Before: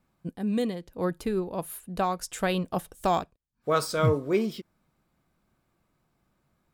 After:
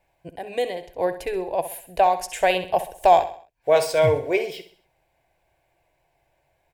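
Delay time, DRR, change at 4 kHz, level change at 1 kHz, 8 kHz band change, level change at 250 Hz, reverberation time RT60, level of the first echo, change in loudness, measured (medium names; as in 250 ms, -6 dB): 65 ms, no reverb, +5.0 dB, +9.5 dB, +3.0 dB, -5.5 dB, no reverb, -12.0 dB, +6.5 dB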